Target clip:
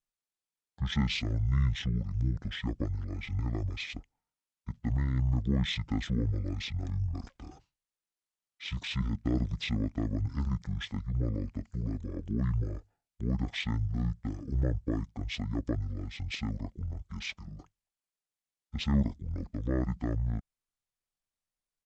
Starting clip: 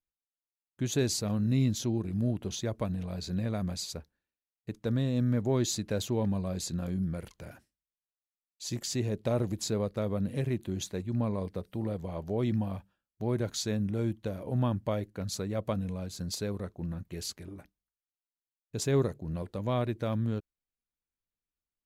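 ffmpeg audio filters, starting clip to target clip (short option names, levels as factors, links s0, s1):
-af "asetrate=22696,aresample=44100,atempo=1.94306,aeval=exprs='0.15*(cos(1*acos(clip(val(0)/0.15,-1,1)))-cos(1*PI/2))+0.00188*(cos(4*acos(clip(val(0)/0.15,-1,1)))-cos(4*PI/2))':c=same"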